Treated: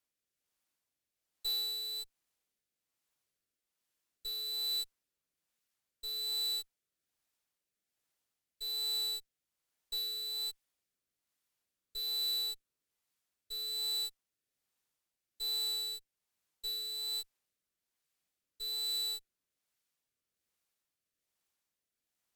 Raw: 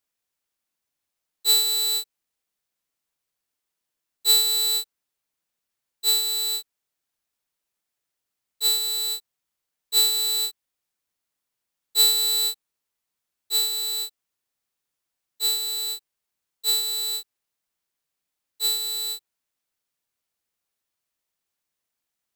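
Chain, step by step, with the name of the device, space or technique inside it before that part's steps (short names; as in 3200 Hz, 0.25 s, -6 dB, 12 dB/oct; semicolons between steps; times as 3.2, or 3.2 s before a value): overdriven rotary cabinet (tube stage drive 34 dB, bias 0.5; rotary speaker horn 1.2 Hz); gain +1.5 dB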